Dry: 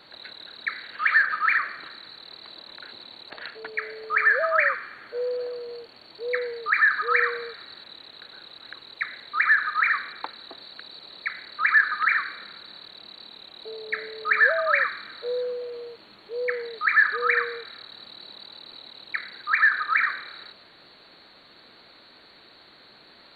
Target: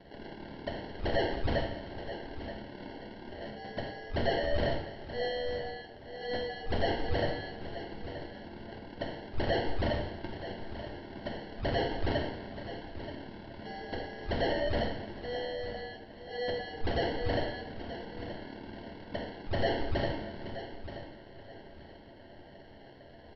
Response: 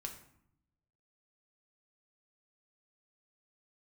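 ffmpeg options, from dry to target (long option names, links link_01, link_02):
-filter_complex "[0:a]asettb=1/sr,asplit=3[link_01][link_02][link_03];[link_01]atrim=end=15.194[link_04];[link_02]atrim=start=15.19:end=15.77,asetpts=PTS-STARTPTS,afade=type=in:duration=0.004:curve=qsin,afade=type=out:start_time=0.576:duration=0.004:curve=qsin,lowshelf=frequency=460:gain=-10.5[link_05];[link_03]atrim=start=15.766[link_06];[link_04][link_05]acrossfade=duration=0.004:curve1=hsin:curve2=qsin[link_07];[link_07][link_06]acrossfade=duration=0.004:curve1=qsin:curve2=hsin,acrossover=split=270[link_08][link_09];[link_09]asoftclip=type=tanh:threshold=-22dB[link_10];[link_08][link_10]amix=inputs=2:normalize=0,acrusher=samples=36:mix=1:aa=0.000001,asplit=2[link_11][link_12];[link_12]aeval=exprs='0.015*(abs(mod(val(0)/0.015+3,4)-2)-1)':channel_layout=same,volume=-7dB[link_13];[link_11][link_13]amix=inputs=2:normalize=0,aecho=1:1:927|1854|2781:0.251|0.0728|0.0211[link_14];[1:a]atrim=start_sample=2205,atrim=end_sample=3087,asetrate=26019,aresample=44100[link_15];[link_14][link_15]afir=irnorm=-1:irlink=0,aresample=11025,aresample=44100,volume=-5dB"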